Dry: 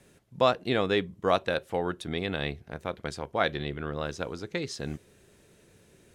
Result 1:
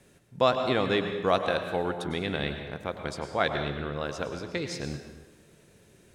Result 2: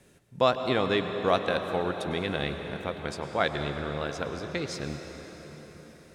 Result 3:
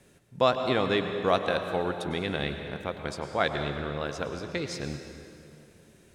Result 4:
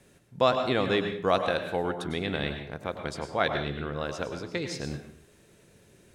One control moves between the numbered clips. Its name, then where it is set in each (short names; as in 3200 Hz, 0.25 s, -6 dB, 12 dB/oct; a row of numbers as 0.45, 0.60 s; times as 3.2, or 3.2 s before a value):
plate-style reverb, RT60: 1.1, 5.2, 2.4, 0.52 s